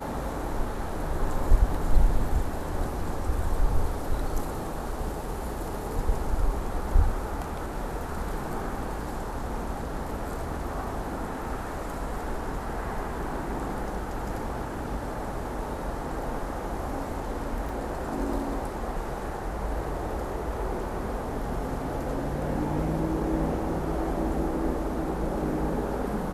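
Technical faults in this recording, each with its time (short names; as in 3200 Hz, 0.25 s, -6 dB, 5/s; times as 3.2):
17.69 gap 2.3 ms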